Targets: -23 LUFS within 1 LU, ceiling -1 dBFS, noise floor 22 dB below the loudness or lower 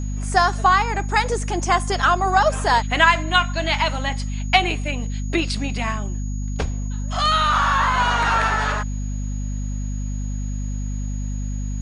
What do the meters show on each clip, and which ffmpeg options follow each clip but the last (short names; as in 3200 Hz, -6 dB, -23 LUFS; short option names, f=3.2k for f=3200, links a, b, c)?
hum 50 Hz; harmonics up to 250 Hz; hum level -23 dBFS; steady tone 6700 Hz; tone level -42 dBFS; loudness -21.0 LUFS; peak -1.0 dBFS; loudness target -23.0 LUFS
-> -af "bandreject=f=50:t=h:w=4,bandreject=f=100:t=h:w=4,bandreject=f=150:t=h:w=4,bandreject=f=200:t=h:w=4,bandreject=f=250:t=h:w=4"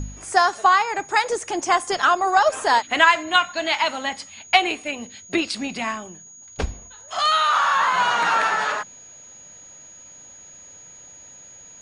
hum none; steady tone 6700 Hz; tone level -42 dBFS
-> -af "bandreject=f=6.7k:w=30"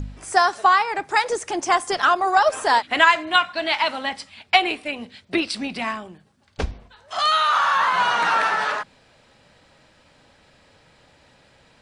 steady tone none; loudness -20.0 LUFS; peak -2.0 dBFS; loudness target -23.0 LUFS
-> -af "volume=-3dB"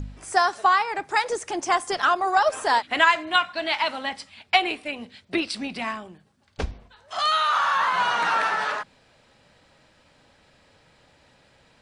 loudness -23.0 LUFS; peak -5.0 dBFS; noise floor -60 dBFS